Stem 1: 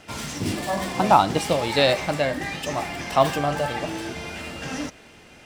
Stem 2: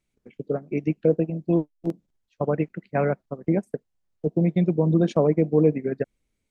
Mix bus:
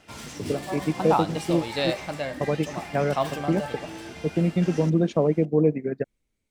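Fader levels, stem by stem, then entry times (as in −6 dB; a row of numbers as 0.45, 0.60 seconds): −7.5, −1.5 decibels; 0.00, 0.00 seconds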